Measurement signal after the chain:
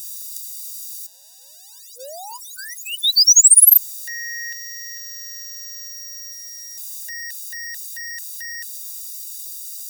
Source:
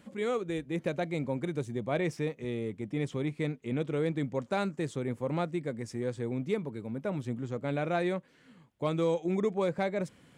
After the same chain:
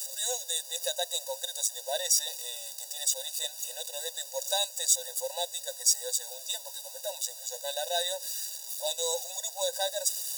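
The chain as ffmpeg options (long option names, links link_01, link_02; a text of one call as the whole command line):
ffmpeg -i in.wav -af "aeval=exprs='val(0)+0.5*0.00473*sgn(val(0))':channel_layout=same,aexciter=amount=14.1:drive=8.2:freq=3600,afftfilt=real='re*eq(mod(floor(b*sr/1024/500),2),1)':imag='im*eq(mod(floor(b*sr/1024/500),2),1)':win_size=1024:overlap=0.75,volume=-1dB" out.wav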